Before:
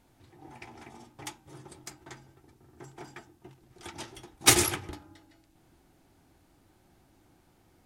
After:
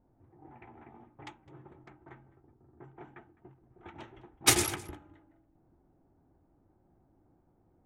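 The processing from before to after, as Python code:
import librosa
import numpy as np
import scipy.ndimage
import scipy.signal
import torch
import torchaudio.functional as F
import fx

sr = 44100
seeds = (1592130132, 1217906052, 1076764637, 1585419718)

y = fx.wiener(x, sr, points=9)
y = fx.env_lowpass(y, sr, base_hz=740.0, full_db=-35.5)
y = y + 10.0 ** (-21.0 / 20.0) * np.pad(y, (int(208 * sr / 1000.0), 0))[:len(y)]
y = F.gain(torch.from_numpy(y), -3.5).numpy()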